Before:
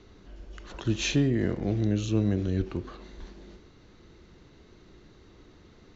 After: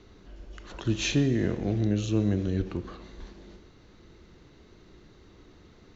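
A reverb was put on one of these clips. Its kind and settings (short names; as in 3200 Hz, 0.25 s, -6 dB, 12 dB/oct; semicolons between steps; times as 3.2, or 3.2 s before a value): Schroeder reverb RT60 1.6 s, combs from 27 ms, DRR 14.5 dB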